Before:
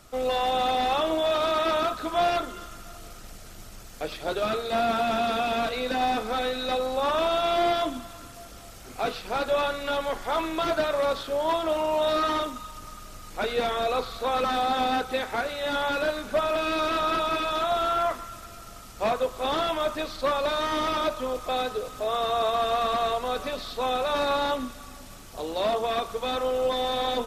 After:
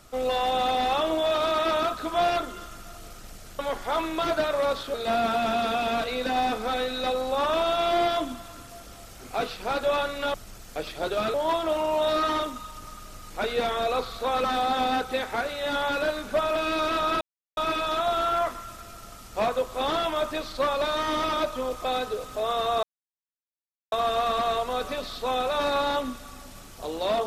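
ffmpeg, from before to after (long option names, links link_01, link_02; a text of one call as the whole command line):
ffmpeg -i in.wav -filter_complex "[0:a]asplit=7[link_01][link_02][link_03][link_04][link_05][link_06][link_07];[link_01]atrim=end=3.592[link_08];[link_02]atrim=start=9.988:end=11.342[link_09];[link_03]atrim=start=4.588:end=9.992[link_10];[link_04]atrim=start=3.588:end=4.592[link_11];[link_05]atrim=start=11.338:end=17.21,asetpts=PTS-STARTPTS,afade=type=out:start_time=5.868:duration=0.004:curve=hsin,apad=pad_dur=0.36[link_12];[link_06]atrim=start=17.21:end=22.47,asetpts=PTS-STARTPTS,afade=type=in:duration=0.004:curve=hsin,afade=type=out:start_time=5.256:duration=0.004:curve=hsin,apad=pad_dur=1.09[link_13];[link_07]atrim=start=22.47,asetpts=PTS-STARTPTS,afade=type=in:duration=0.004:curve=hsin[link_14];[link_08][link_09]acrossfade=duration=0.004:curve1=hsin:curve2=hsin[link_15];[link_15][link_10]acrossfade=duration=0.004:curve1=hsin:curve2=hsin[link_16];[link_16][link_11]acrossfade=duration=0.004:curve1=hsin:curve2=hsin[link_17];[link_12][link_13][link_14]concat=n=3:v=0:a=1[link_18];[link_17][link_18]acrossfade=duration=0.004:curve1=hsin:curve2=hsin" out.wav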